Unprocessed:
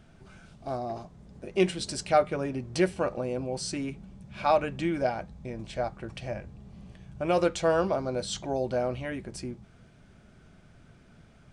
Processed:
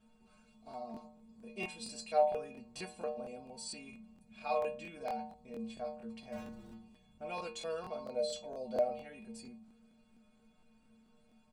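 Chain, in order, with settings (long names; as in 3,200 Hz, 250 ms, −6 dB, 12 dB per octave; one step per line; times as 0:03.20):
comb filter 4.4 ms, depth 98%
0:06.32–0:06.74: power curve on the samples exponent 0.5
0:08.06–0:08.91: parametric band 560 Hz +14 dB 0.39 octaves
stiff-string resonator 110 Hz, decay 0.64 s, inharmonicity 0.008
regular buffer underruns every 0.23 s, samples 1,024, repeat, from 0:00.69
level +1.5 dB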